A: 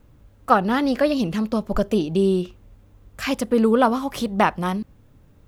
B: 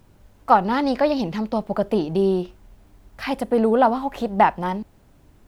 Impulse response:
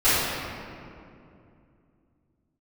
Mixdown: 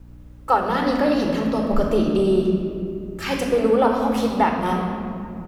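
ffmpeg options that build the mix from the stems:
-filter_complex "[0:a]alimiter=limit=-11.5dB:level=0:latency=1:release=187,volume=-5dB,asplit=2[link_01][link_02];[link_02]volume=-15dB[link_03];[1:a]aeval=exprs='val(0)+0.0126*(sin(2*PI*60*n/s)+sin(2*PI*2*60*n/s)/2+sin(2*PI*3*60*n/s)/3+sin(2*PI*4*60*n/s)/4+sin(2*PI*5*60*n/s)/5)':channel_layout=same,adelay=2.4,volume=-4.5dB[link_04];[2:a]atrim=start_sample=2205[link_05];[link_03][link_05]afir=irnorm=-1:irlink=0[link_06];[link_01][link_04][link_06]amix=inputs=3:normalize=0"

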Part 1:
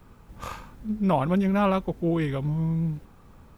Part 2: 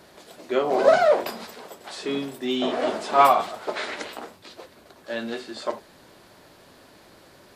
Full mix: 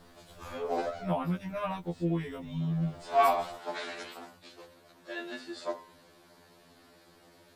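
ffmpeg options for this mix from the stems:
ffmpeg -i stem1.wav -i stem2.wav -filter_complex "[0:a]volume=-6dB,asplit=2[link_01][link_02];[1:a]bandreject=frequency=104.4:width_type=h:width=4,bandreject=frequency=208.8:width_type=h:width=4,bandreject=frequency=313.2:width_type=h:width=4,bandreject=frequency=417.6:width_type=h:width=4,bandreject=frequency=522:width_type=h:width=4,bandreject=frequency=626.4:width_type=h:width=4,bandreject=frequency=730.8:width_type=h:width=4,bandreject=frequency=835.2:width_type=h:width=4,bandreject=frequency=939.6:width_type=h:width=4,bandreject=frequency=1044:width_type=h:width=4,bandreject=frequency=1148.4:width_type=h:width=4,bandreject=frequency=1252.8:width_type=h:width=4,bandreject=frequency=1357.2:width_type=h:width=4,bandreject=frequency=1461.6:width_type=h:width=4,bandreject=frequency=1566:width_type=h:width=4,bandreject=frequency=1670.4:width_type=h:width=4,bandreject=frequency=1774.8:width_type=h:width=4,bandreject=frequency=1879.2:width_type=h:width=4,bandreject=frequency=1983.6:width_type=h:width=4,bandreject=frequency=2088:width_type=h:width=4,bandreject=frequency=2192.4:width_type=h:width=4,bandreject=frequency=2296.8:width_type=h:width=4,bandreject=frequency=2401.2:width_type=h:width=4,bandreject=frequency=2505.6:width_type=h:width=4,bandreject=frequency=2610:width_type=h:width=4,bandreject=frequency=2714.4:width_type=h:width=4,bandreject=frequency=2818.8:width_type=h:width=4,bandreject=frequency=2923.2:width_type=h:width=4,bandreject=frequency=3027.6:width_type=h:width=4,bandreject=frequency=3132:width_type=h:width=4,bandreject=frequency=3236.4:width_type=h:width=4,bandreject=frequency=3340.8:width_type=h:width=4,bandreject=frequency=3445.2:width_type=h:width=4,bandreject=frequency=3549.6:width_type=h:width=4,bandreject=frequency=3654:width_type=h:width=4,volume=-5dB[link_03];[link_02]apad=whole_len=333153[link_04];[link_03][link_04]sidechaincompress=threshold=-45dB:ratio=10:attack=6.2:release=250[link_05];[link_01][link_05]amix=inputs=2:normalize=0,afftfilt=real='re*2*eq(mod(b,4),0)':imag='im*2*eq(mod(b,4),0)':win_size=2048:overlap=0.75" out.wav

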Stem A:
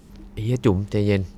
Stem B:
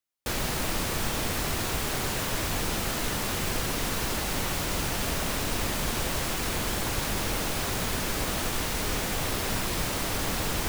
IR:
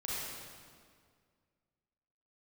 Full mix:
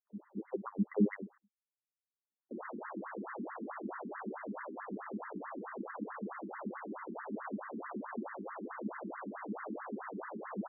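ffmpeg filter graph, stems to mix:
-filter_complex "[0:a]agate=range=-46dB:threshold=-43dB:ratio=16:detection=peak,highshelf=frequency=2200:gain=9,acrossover=split=280|5400[link_01][link_02][link_03];[link_01]acompressor=threshold=-23dB:ratio=4[link_04];[link_02]acompressor=threshold=-26dB:ratio=4[link_05];[link_03]acompressor=threshold=-53dB:ratio=4[link_06];[link_04][link_05][link_06]amix=inputs=3:normalize=0,volume=-2.5dB[link_07];[1:a]lowpass=2000,adelay=2250,volume=-4.5dB[link_08];[link_07][link_08]amix=inputs=2:normalize=0,equalizer=frequency=200:width_type=o:width=0.24:gain=15,afftfilt=real='re*between(b*sr/1024,270*pow(1500/270,0.5+0.5*sin(2*PI*4.6*pts/sr))/1.41,270*pow(1500/270,0.5+0.5*sin(2*PI*4.6*pts/sr))*1.41)':imag='im*between(b*sr/1024,270*pow(1500/270,0.5+0.5*sin(2*PI*4.6*pts/sr))/1.41,270*pow(1500/270,0.5+0.5*sin(2*PI*4.6*pts/sr))*1.41)':win_size=1024:overlap=0.75"

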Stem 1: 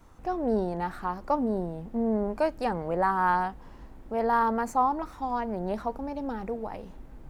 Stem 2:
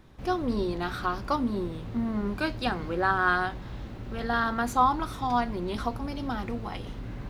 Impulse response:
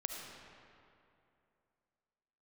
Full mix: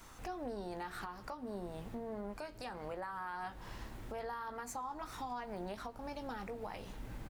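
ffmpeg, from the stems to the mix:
-filter_complex "[0:a]tiltshelf=frequency=1100:gain=-8,acompressor=threshold=-38dB:ratio=5,volume=2dB,asplit=2[link_01][link_02];[link_02]volume=-17dB[link_03];[1:a]acompressor=threshold=-30dB:ratio=6,adelay=15,volume=-12dB[link_04];[2:a]atrim=start_sample=2205[link_05];[link_03][link_05]afir=irnorm=-1:irlink=0[link_06];[link_01][link_04][link_06]amix=inputs=3:normalize=0,alimiter=level_in=9dB:limit=-24dB:level=0:latency=1:release=388,volume=-9dB"

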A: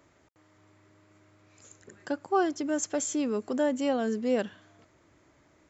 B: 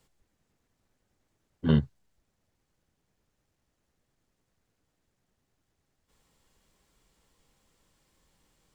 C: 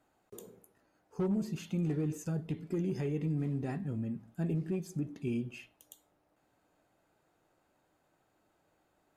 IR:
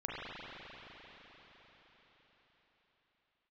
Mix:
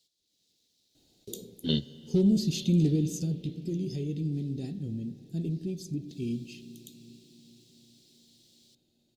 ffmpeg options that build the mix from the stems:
-filter_complex "[1:a]highpass=frequency=780:poles=1,volume=-3.5dB,asplit=2[link_01][link_02];[link_02]volume=-19dB[link_03];[2:a]adelay=950,volume=-1dB,afade=type=out:start_time=2.82:duration=0.59:silence=0.398107,asplit=2[link_04][link_05];[link_05]volume=-16.5dB[link_06];[3:a]atrim=start_sample=2205[link_07];[link_03][link_06]amix=inputs=2:normalize=0[link_08];[link_08][link_07]afir=irnorm=-1:irlink=0[link_09];[link_01][link_04][link_09]amix=inputs=3:normalize=0,firequalizer=gain_entry='entry(300,0);entry(1100,-27);entry(3800,12);entry(7800,0)':delay=0.05:min_phase=1,dynaudnorm=framelen=120:gausssize=5:maxgain=9.5dB"

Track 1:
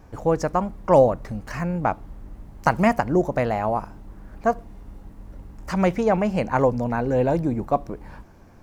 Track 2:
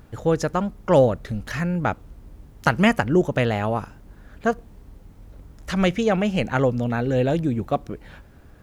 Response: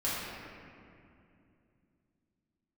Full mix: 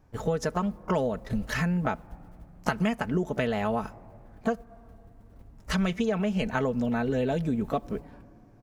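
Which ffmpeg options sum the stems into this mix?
-filter_complex "[0:a]equalizer=frequency=120:width=2.7:gain=5,acompressor=threshold=-21dB:ratio=5,volume=-14dB,asplit=3[link_01][link_02][link_03];[link_02]volume=-15dB[link_04];[1:a]aecho=1:1:4.6:0.59,adelay=17,volume=0dB[link_05];[link_03]apad=whole_len=381233[link_06];[link_05][link_06]sidechaingate=range=-33dB:threshold=-49dB:ratio=16:detection=peak[link_07];[2:a]atrim=start_sample=2205[link_08];[link_04][link_08]afir=irnorm=-1:irlink=0[link_09];[link_01][link_07][link_09]amix=inputs=3:normalize=0,acompressor=threshold=-24dB:ratio=6"

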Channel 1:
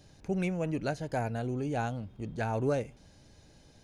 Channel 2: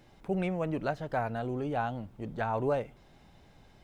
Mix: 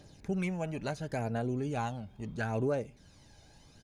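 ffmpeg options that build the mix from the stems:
ffmpeg -i stem1.wav -i stem2.wav -filter_complex "[0:a]lowshelf=frequency=160:gain=-5.5,aphaser=in_gain=1:out_gain=1:delay=1.4:decay=0.48:speed=0.73:type=triangular,volume=0dB[link_01];[1:a]adelay=5.1,volume=-14dB[link_02];[link_01][link_02]amix=inputs=2:normalize=0,alimiter=limit=-23dB:level=0:latency=1:release=455" out.wav

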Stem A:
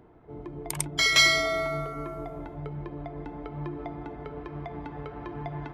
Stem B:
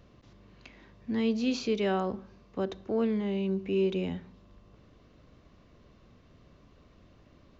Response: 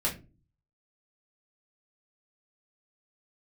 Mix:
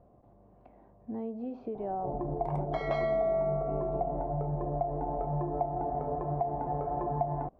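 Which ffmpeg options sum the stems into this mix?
-filter_complex "[0:a]adelay=1750,volume=1.5dB,asplit=2[link_01][link_02];[link_02]volume=-8.5dB[link_03];[1:a]acompressor=threshold=-30dB:ratio=6,volume=-5dB[link_04];[2:a]atrim=start_sample=2205[link_05];[link_03][link_05]afir=irnorm=-1:irlink=0[link_06];[link_01][link_04][link_06]amix=inputs=3:normalize=0,lowpass=frequency=740:width_type=q:width=4.9,acompressor=threshold=-31dB:ratio=2.5"

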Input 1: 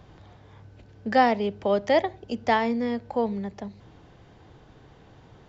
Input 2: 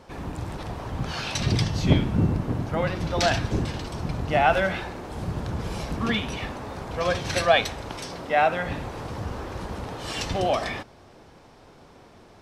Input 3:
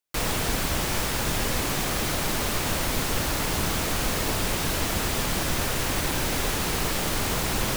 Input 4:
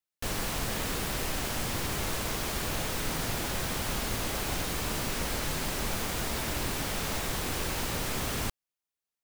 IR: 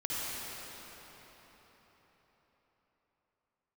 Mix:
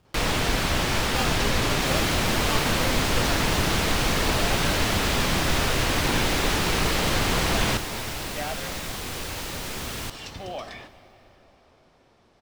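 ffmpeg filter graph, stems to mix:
-filter_complex "[0:a]acrusher=samples=22:mix=1:aa=0.000001,volume=-12.5dB[link_01];[1:a]alimiter=limit=-13.5dB:level=0:latency=1:release=243,adelay=50,volume=-12dB,asplit=2[link_02][link_03];[link_03]volume=-20dB[link_04];[2:a]lowpass=frequency=3700:poles=1,volume=1.5dB,asplit=2[link_05][link_06];[link_06]volume=-15dB[link_07];[3:a]adelay=1600,volume=-3dB,asplit=2[link_08][link_09];[link_09]volume=-17.5dB[link_10];[4:a]atrim=start_sample=2205[link_11];[link_04][link_07][link_10]amix=inputs=3:normalize=0[link_12];[link_12][link_11]afir=irnorm=-1:irlink=0[link_13];[link_01][link_02][link_05][link_08][link_13]amix=inputs=5:normalize=0,equalizer=frequency=3700:width=0.63:gain=4"

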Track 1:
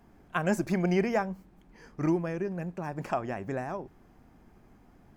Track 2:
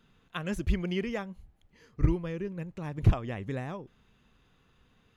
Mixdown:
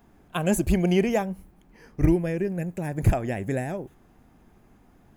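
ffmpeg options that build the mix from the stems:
ffmpeg -i stem1.wav -i stem2.wav -filter_complex "[0:a]volume=1dB[link_01];[1:a]agate=range=-10dB:threshold=-53dB:ratio=16:detection=peak,aexciter=amount=6.5:drive=6.7:freq=6900,volume=1.5dB[link_02];[link_01][link_02]amix=inputs=2:normalize=0" out.wav

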